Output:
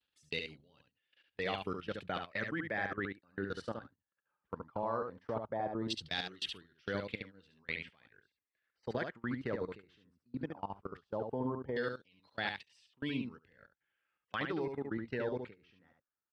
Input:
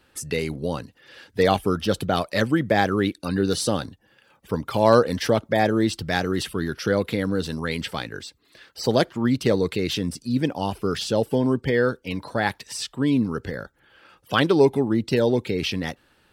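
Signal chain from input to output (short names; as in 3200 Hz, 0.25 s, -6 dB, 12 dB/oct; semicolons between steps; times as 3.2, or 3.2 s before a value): pre-emphasis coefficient 0.8; LFO low-pass saw down 0.17 Hz 920–3600 Hz; level quantiser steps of 17 dB; echo 71 ms -5.5 dB; gate -46 dBFS, range -15 dB; gain -2 dB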